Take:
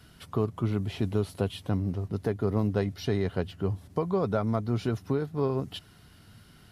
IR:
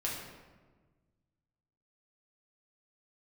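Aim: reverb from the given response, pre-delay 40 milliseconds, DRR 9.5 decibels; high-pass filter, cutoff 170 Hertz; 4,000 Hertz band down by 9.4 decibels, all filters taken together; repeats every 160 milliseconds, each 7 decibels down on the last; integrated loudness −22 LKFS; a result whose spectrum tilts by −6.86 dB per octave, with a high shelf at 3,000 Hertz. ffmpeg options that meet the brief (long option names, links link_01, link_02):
-filter_complex "[0:a]highpass=170,highshelf=frequency=3000:gain=-8,equalizer=frequency=4000:width_type=o:gain=-7,aecho=1:1:160|320|480|640|800:0.447|0.201|0.0905|0.0407|0.0183,asplit=2[link_01][link_02];[1:a]atrim=start_sample=2205,adelay=40[link_03];[link_02][link_03]afir=irnorm=-1:irlink=0,volume=-13.5dB[link_04];[link_01][link_04]amix=inputs=2:normalize=0,volume=9dB"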